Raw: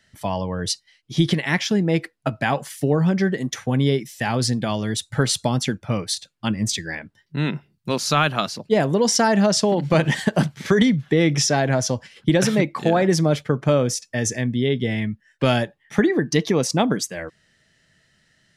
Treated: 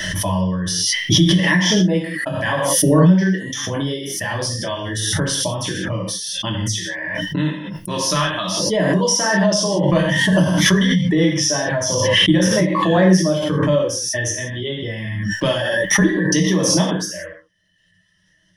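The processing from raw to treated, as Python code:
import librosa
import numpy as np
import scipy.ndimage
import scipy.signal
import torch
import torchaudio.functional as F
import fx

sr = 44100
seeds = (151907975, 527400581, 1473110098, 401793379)

y = fx.dereverb_blind(x, sr, rt60_s=1.2)
y = fx.ripple_eq(y, sr, per_octave=1.2, db=12)
y = fx.rev_gated(y, sr, seeds[0], gate_ms=210, shape='falling', drr_db=-3.5)
y = fx.pre_swell(y, sr, db_per_s=23.0)
y = y * 10.0 ** (-6.0 / 20.0)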